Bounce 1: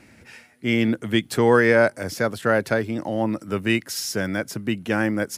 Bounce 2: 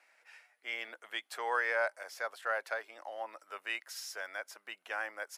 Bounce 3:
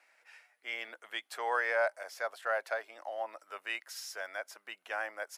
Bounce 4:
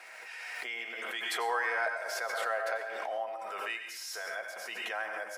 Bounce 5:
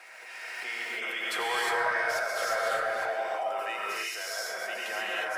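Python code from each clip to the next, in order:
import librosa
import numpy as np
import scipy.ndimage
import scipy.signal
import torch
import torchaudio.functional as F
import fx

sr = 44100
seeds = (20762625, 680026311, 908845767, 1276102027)

y1 = scipy.signal.sosfilt(scipy.signal.butter(4, 700.0, 'highpass', fs=sr, output='sos'), x)
y1 = fx.high_shelf(y1, sr, hz=2900.0, db=-8.0)
y1 = fx.notch(y1, sr, hz=890.0, q=28.0)
y1 = F.gain(torch.from_numpy(y1), -8.5).numpy()
y2 = fx.dynamic_eq(y1, sr, hz=660.0, q=3.4, threshold_db=-53.0, ratio=4.0, max_db=6)
y3 = fx.notch_comb(y2, sr, f0_hz=290.0)
y3 = fx.rev_plate(y3, sr, seeds[0], rt60_s=0.63, hf_ratio=0.95, predelay_ms=80, drr_db=5.0)
y3 = fx.pre_swell(y3, sr, db_per_s=20.0)
y4 = 10.0 ** (-23.5 / 20.0) * np.tanh(y3 / 10.0 ** (-23.5 / 20.0))
y4 = fx.rev_gated(y4, sr, seeds[1], gate_ms=380, shape='rising', drr_db=-4.0)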